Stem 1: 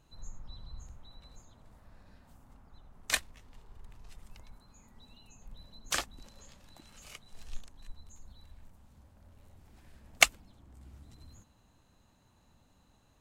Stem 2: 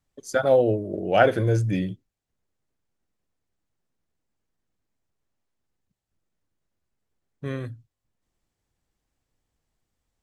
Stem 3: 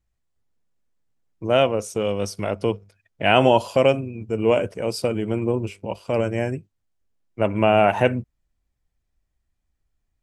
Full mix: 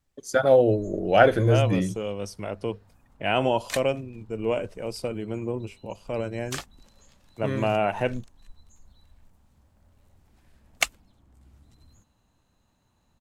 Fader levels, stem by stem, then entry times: −2.5, +1.0, −7.5 decibels; 0.60, 0.00, 0.00 seconds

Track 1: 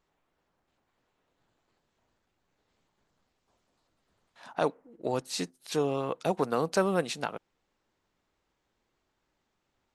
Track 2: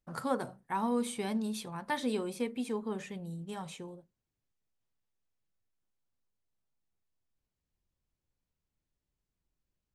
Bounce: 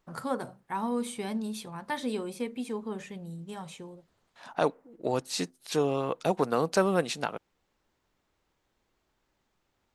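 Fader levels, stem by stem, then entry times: +1.5, +0.5 decibels; 0.00, 0.00 seconds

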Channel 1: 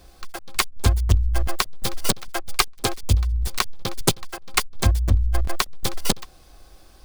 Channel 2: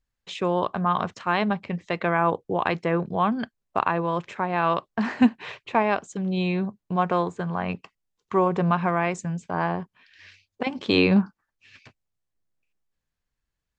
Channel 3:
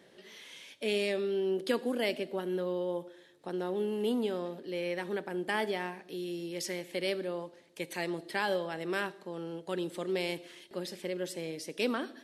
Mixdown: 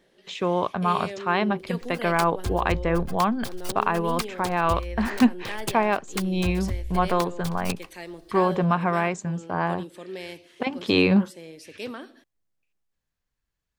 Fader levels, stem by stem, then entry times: −11.5, 0.0, −4.0 decibels; 1.60, 0.00, 0.00 seconds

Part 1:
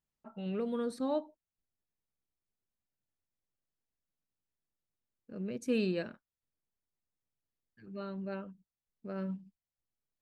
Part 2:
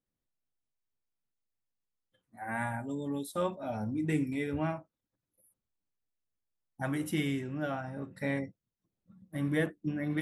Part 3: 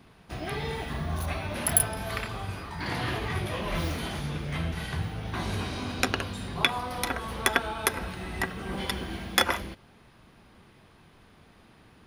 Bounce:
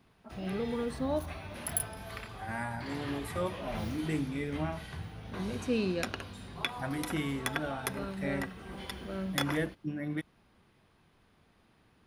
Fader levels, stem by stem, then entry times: +0.5, −2.5, −10.0 decibels; 0.00, 0.00, 0.00 seconds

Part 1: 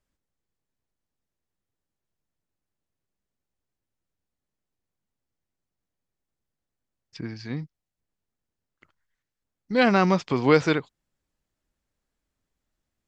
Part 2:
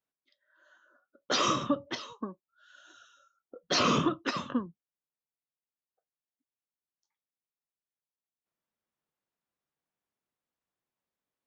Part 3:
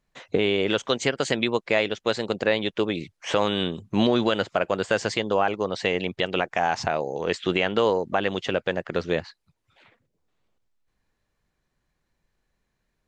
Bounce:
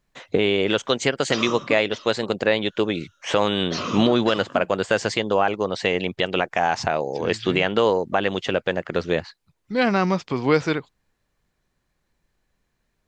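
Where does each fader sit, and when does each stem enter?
−0.5, −3.0, +2.5 decibels; 0.00, 0.00, 0.00 seconds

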